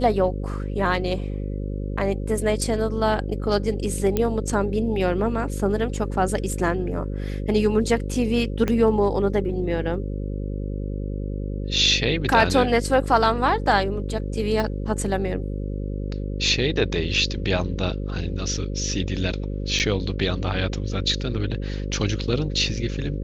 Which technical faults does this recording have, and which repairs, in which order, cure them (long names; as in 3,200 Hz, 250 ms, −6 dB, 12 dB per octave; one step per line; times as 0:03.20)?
mains buzz 50 Hz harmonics 11 −28 dBFS
0:04.17: click −9 dBFS
0:08.68: click −11 dBFS
0:14.60: click −13 dBFS
0:19.79–0:19.80: drop-out 8.4 ms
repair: click removal
hum removal 50 Hz, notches 11
repair the gap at 0:19.79, 8.4 ms